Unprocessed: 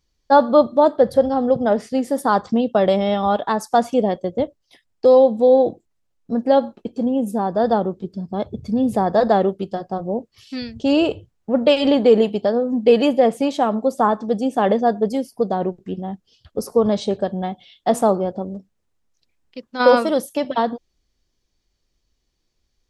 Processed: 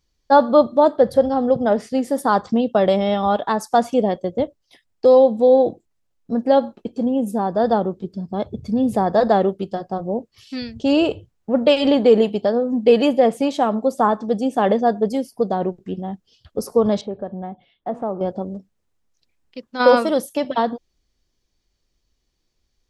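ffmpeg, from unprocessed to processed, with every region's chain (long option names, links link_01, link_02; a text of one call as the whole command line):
ffmpeg -i in.wav -filter_complex "[0:a]asettb=1/sr,asplit=3[link_01][link_02][link_03];[link_01]atrim=end=17.014[link_04];[link_02]atrim=start=17.01:end=18.21,asetpts=PTS-STARTPTS,afade=type=in:duration=0.004:curve=qsin,afade=type=out:start_time=1.196:duration=0.004:curve=qsin,lowpass=1400,acompressor=threshold=-35dB:ratio=1.5:attack=3.2:release=140:knee=1:detection=peak[link_05];[link_03]atrim=start=18.206[link_06];[link_04][link_05]acrossfade=duration=0.004:curve1=hsin:curve2=qsin[link_07];[link_07][link_06]acrossfade=duration=0.004:curve1=qsin:curve2=hsin" out.wav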